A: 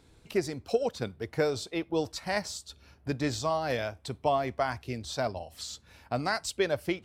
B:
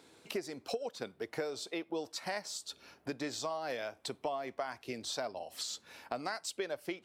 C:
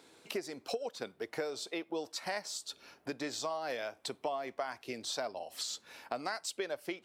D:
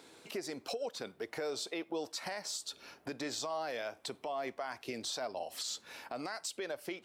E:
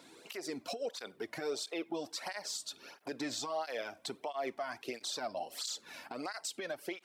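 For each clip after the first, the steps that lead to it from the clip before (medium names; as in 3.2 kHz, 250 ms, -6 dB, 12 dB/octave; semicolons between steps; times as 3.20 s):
high-pass 280 Hz 12 dB/octave; compression 4:1, threshold -40 dBFS, peak gain reduction 16 dB; trim +3.5 dB
bass shelf 160 Hz -7.5 dB; trim +1 dB
peak limiter -32 dBFS, peak gain reduction 10.5 dB; trim +3 dB
cancelling through-zero flanger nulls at 1.5 Hz, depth 2.6 ms; trim +3 dB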